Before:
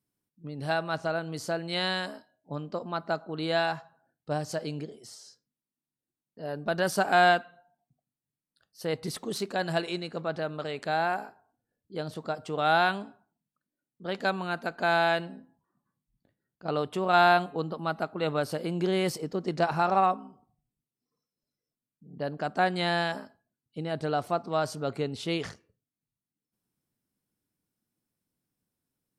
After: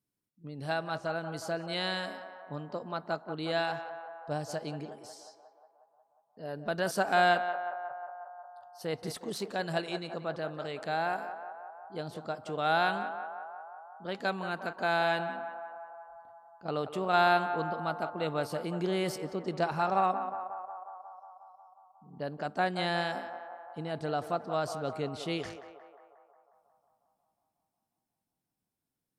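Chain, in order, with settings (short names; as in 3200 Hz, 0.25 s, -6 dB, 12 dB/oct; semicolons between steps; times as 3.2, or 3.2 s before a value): narrowing echo 0.18 s, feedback 75%, band-pass 880 Hz, level -8.5 dB; gain -4 dB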